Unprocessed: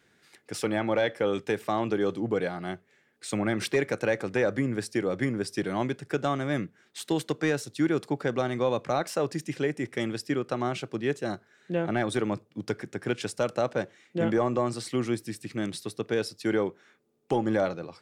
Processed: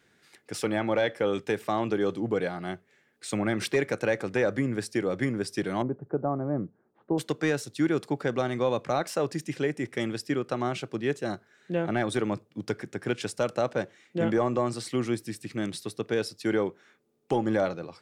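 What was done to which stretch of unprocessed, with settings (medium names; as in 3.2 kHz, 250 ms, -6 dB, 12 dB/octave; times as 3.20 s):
5.82–7.18 s: low-pass 1 kHz 24 dB/octave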